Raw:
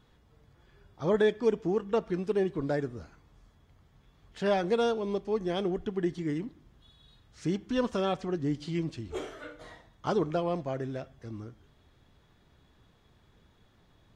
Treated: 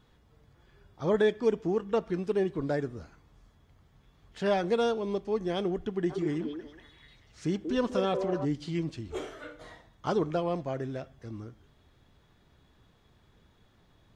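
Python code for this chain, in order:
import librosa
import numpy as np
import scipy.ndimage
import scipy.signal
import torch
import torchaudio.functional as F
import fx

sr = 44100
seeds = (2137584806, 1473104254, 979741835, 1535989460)

y = fx.echo_stepped(x, sr, ms=187, hz=460.0, octaves=0.7, feedback_pct=70, wet_db=-1.5, at=(6.09, 8.44), fade=0.02)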